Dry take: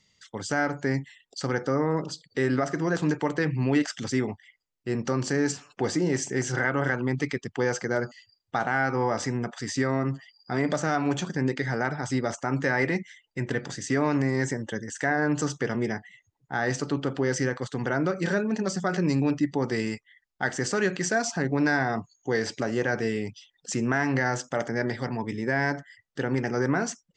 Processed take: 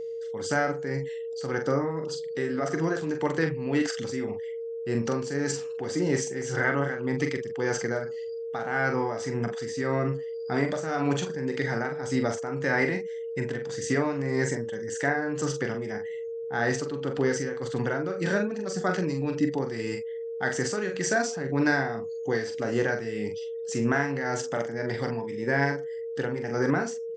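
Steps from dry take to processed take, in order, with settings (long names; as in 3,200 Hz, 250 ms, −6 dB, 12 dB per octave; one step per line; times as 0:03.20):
amplitude tremolo 1.8 Hz, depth 62%
double-tracking delay 43 ms −6 dB
steady tone 460 Hz −32 dBFS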